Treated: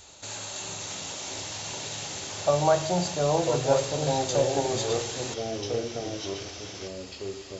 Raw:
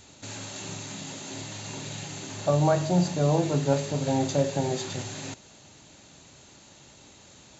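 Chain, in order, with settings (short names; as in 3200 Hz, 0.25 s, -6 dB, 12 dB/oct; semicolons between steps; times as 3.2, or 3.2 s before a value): graphic EQ 125/250/2000 Hz -9/-12/-4 dB; echoes that change speed 0.528 s, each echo -3 st, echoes 2, each echo -6 dB; gain +4 dB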